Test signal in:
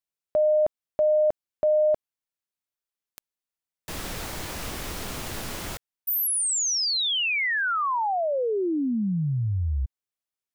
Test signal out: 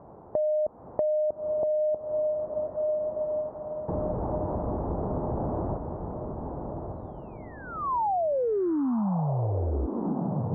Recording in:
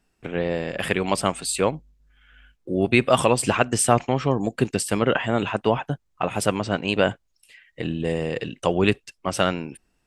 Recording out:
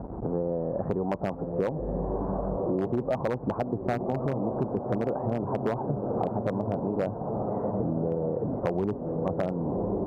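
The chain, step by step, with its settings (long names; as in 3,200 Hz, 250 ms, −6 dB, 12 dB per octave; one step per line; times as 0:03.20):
converter with a step at zero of −26.5 dBFS
Butterworth low-pass 930 Hz 36 dB per octave
automatic gain control gain up to 3.5 dB
on a send: feedback delay with all-pass diffusion 1,179 ms, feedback 44%, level −7 dB
on the sum: wave folding −7.5 dBFS
high-pass filter 46 Hz
downward compressor 6 to 1, threshold −25 dBFS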